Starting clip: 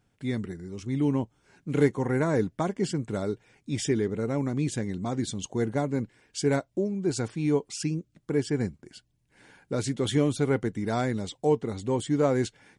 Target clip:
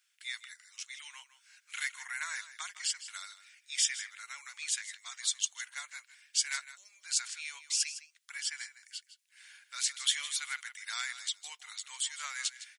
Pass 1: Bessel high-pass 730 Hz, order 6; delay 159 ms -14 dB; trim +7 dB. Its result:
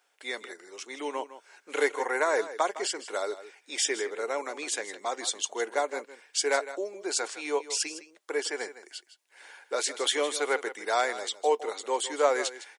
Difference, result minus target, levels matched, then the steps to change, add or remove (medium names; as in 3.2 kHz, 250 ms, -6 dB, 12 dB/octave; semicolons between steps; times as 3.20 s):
1 kHz band +13.0 dB
change: Bessel high-pass 2.5 kHz, order 6